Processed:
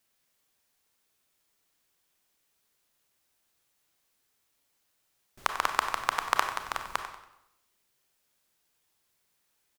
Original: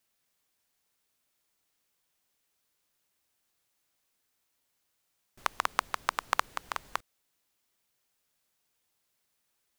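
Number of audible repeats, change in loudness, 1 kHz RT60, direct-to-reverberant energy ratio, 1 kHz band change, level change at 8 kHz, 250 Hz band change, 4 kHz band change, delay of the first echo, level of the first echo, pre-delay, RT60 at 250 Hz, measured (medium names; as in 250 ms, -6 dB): 3, +3.0 dB, 0.85 s, 5.0 dB, +3.0 dB, +3.0 dB, +3.0 dB, +3.0 dB, 94 ms, -11.5 dB, 27 ms, 0.85 s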